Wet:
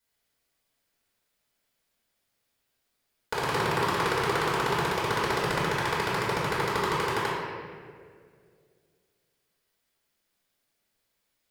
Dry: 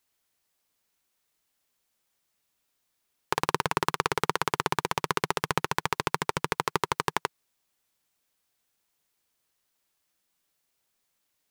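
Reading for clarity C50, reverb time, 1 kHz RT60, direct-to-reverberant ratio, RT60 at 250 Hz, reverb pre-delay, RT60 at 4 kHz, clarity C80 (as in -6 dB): -1.5 dB, 2.1 s, 1.7 s, -10.0 dB, 2.4 s, 3 ms, 1.3 s, 0.5 dB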